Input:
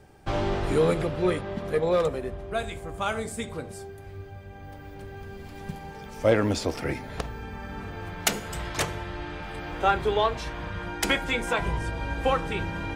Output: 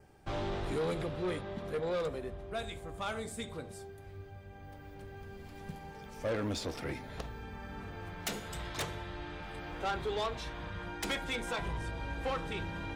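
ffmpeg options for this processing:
-af "adynamicequalizer=threshold=0.00251:dfrequency=3700:dqfactor=5.2:tfrequency=3700:tqfactor=5.2:attack=5:release=100:ratio=0.375:range=3:mode=boostabove:tftype=bell,asoftclip=type=tanh:threshold=0.0794,volume=0.447"

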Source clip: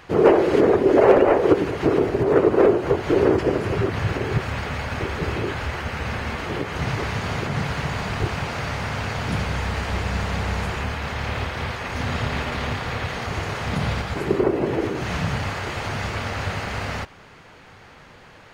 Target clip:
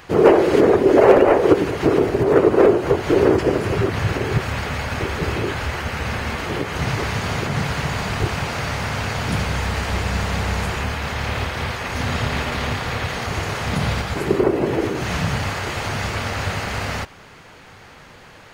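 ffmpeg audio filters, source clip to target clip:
-af "highshelf=f=6400:g=7.5,volume=1.33"

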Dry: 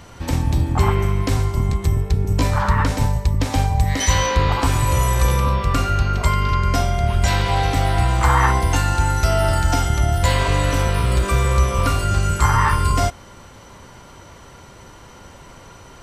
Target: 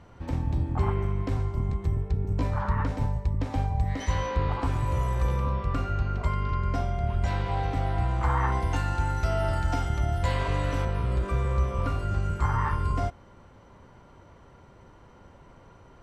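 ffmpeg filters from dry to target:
-af "asetnsamples=n=441:p=0,asendcmd='8.52 lowpass f 2200;10.85 lowpass f 1100',lowpass=f=1200:p=1,volume=0.376"

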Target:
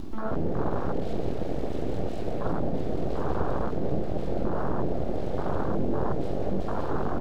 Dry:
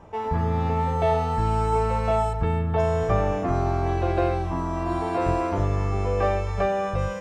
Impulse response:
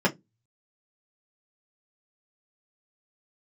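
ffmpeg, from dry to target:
-filter_complex "[0:a]asplit=9[s0][s1][s2][s3][s4][s5][s6][s7][s8];[s1]adelay=189,afreqshift=46,volume=0.631[s9];[s2]adelay=378,afreqshift=92,volume=0.372[s10];[s3]adelay=567,afreqshift=138,volume=0.219[s11];[s4]adelay=756,afreqshift=184,volume=0.13[s12];[s5]adelay=945,afreqshift=230,volume=0.0767[s13];[s6]adelay=1134,afreqshift=276,volume=0.0452[s14];[s7]adelay=1323,afreqshift=322,volume=0.0266[s15];[s8]adelay=1512,afreqshift=368,volume=0.0157[s16];[s0][s9][s10][s11][s12][s13][s14][s15][s16]amix=inputs=9:normalize=0,aeval=exprs='0.0668*(abs(mod(val(0)/0.0668+3,4)-2)-1)':c=same,bandreject=f=60:t=h:w=6,bandreject=f=120:t=h:w=6,bandreject=f=180:t=h:w=6,bandreject=f=240:t=h:w=6,bandreject=f=300:t=h:w=6,asplit=2[s17][s18];[s18]adelay=49,volume=0.398[s19];[s17][s19]amix=inputs=2:normalize=0,asplit=2[s20][s21];[1:a]atrim=start_sample=2205,asetrate=22491,aresample=44100[s22];[s21][s22]afir=irnorm=-1:irlink=0,volume=0.0282[s23];[s20][s23]amix=inputs=2:normalize=0,acrusher=bits=7:mix=0:aa=0.000001,lowshelf=f=350:g=3.5,acompressor=mode=upward:threshold=0.126:ratio=2.5,equalizer=f=125:t=o:w=1:g=11,equalizer=f=250:t=o:w=1:g=10,equalizer=f=500:t=o:w=1:g=6,equalizer=f=2000:t=o:w=1:g=-5,equalizer=f=4000:t=o:w=1:g=8,aeval=exprs='abs(val(0))':c=same,afwtdn=0.141,volume=0.398"

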